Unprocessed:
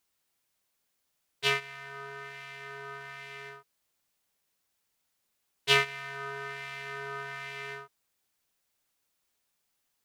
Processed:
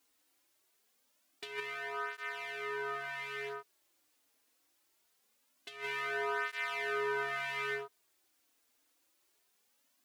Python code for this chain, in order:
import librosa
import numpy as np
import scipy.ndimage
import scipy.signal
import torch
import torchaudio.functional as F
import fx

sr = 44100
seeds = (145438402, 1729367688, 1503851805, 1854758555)

y = fx.low_shelf_res(x, sr, hz=210.0, db=-7.0, q=3.0)
y = fx.over_compress(y, sr, threshold_db=-37.0, ratio=-1.0)
y = fx.dynamic_eq(y, sr, hz=6000.0, q=0.72, threshold_db=-52.0, ratio=4.0, max_db=-4)
y = fx.flanger_cancel(y, sr, hz=0.23, depth_ms=5.5)
y = F.gain(torch.from_numpy(y), 3.5).numpy()